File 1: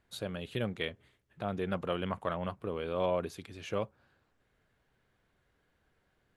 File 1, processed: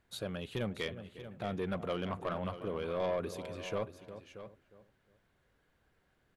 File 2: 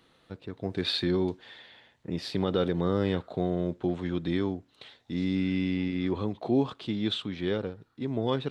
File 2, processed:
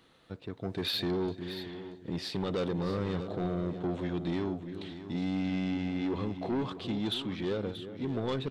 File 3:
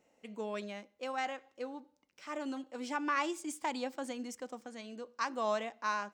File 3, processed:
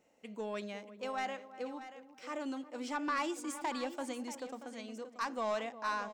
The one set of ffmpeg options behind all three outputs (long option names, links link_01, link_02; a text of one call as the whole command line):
ffmpeg -i in.wav -filter_complex "[0:a]asplit=2[link_01][link_02];[link_02]adelay=357,lowpass=frequency=830:poles=1,volume=-13.5dB,asplit=2[link_03][link_04];[link_04]adelay=357,lowpass=frequency=830:poles=1,volume=0.3,asplit=2[link_05][link_06];[link_06]adelay=357,lowpass=frequency=830:poles=1,volume=0.3[link_07];[link_03][link_05][link_07]amix=inputs=3:normalize=0[link_08];[link_01][link_08]amix=inputs=2:normalize=0,asoftclip=type=tanh:threshold=-26.5dB,asplit=2[link_09][link_10];[link_10]aecho=0:1:632:0.237[link_11];[link_09][link_11]amix=inputs=2:normalize=0" out.wav